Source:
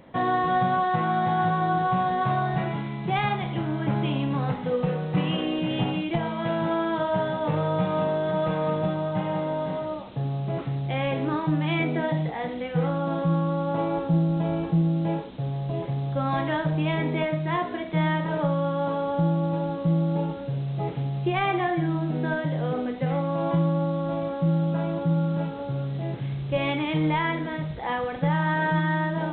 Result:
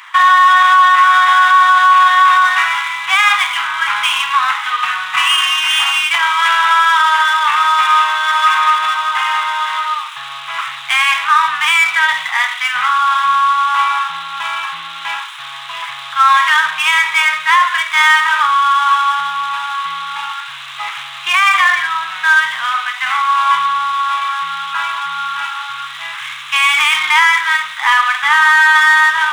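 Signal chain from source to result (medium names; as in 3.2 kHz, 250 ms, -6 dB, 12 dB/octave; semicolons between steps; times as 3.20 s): median filter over 9 samples; elliptic high-pass 1.1 kHz, stop band 50 dB; loudness maximiser +27 dB; trim -1 dB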